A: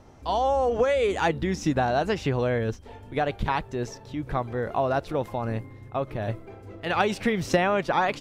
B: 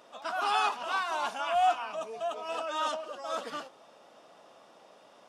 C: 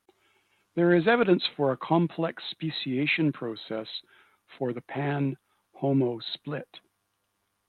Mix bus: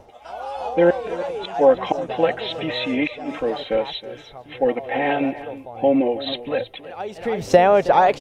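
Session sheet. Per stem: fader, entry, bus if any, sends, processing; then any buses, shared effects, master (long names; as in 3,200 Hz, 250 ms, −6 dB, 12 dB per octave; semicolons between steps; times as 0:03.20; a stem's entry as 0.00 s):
+2.0 dB, 0.00 s, no send, echo send −16.5 dB, automatic ducking −21 dB, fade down 0.20 s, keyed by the third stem
+0.5 dB, 0.00 s, no send, no echo send, downward compressor, threshold −29 dBFS, peak gain reduction 8 dB; tuned comb filter 120 Hz, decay 0.19 s, harmonics all, mix 90%
+1.5 dB, 0.00 s, no send, echo send −15.5 dB, flat-topped bell 2,400 Hz +9 dB 1.1 octaves; comb filter 3.8 ms, depth 81%; gate with flip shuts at −12 dBFS, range −28 dB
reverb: not used
echo: single-tap delay 320 ms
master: flat-topped bell 590 Hz +9 dB 1.3 octaves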